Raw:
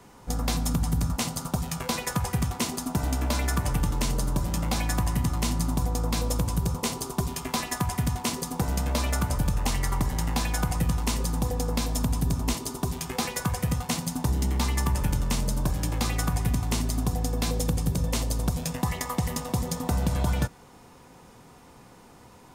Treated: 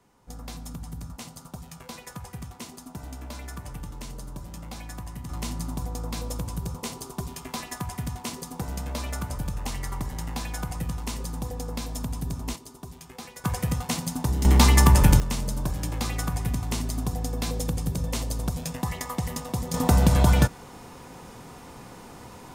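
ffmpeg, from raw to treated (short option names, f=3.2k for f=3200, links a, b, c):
-af "asetnsamples=n=441:p=0,asendcmd='5.29 volume volume -5.5dB;12.56 volume volume -12.5dB;13.44 volume volume 0dB;14.45 volume volume 9.5dB;15.2 volume volume -2dB;19.74 volume volume 7dB',volume=-12dB"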